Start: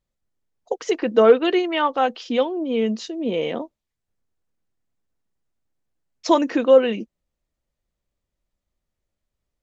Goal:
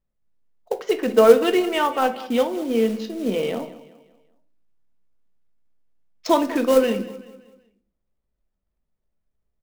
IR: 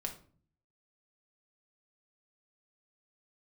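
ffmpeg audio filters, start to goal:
-filter_complex "[0:a]adynamicsmooth=sensitivity=4.5:basefreq=2200,aecho=1:1:191|382|573|764:0.141|0.0593|0.0249|0.0105,acrusher=bits=5:mode=log:mix=0:aa=0.000001,asplit=2[link_01][link_02];[1:a]atrim=start_sample=2205[link_03];[link_02][link_03]afir=irnorm=-1:irlink=0,volume=3.5dB[link_04];[link_01][link_04]amix=inputs=2:normalize=0,volume=-7.5dB"

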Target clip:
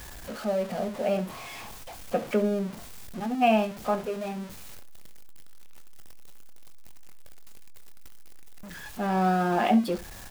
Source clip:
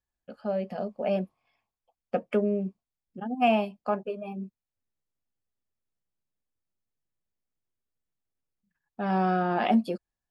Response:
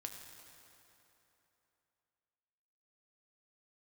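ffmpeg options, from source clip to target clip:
-af "aeval=exprs='val(0)+0.5*0.0178*sgn(val(0))':channel_layout=same,aecho=1:1:23|70:0.251|0.15"

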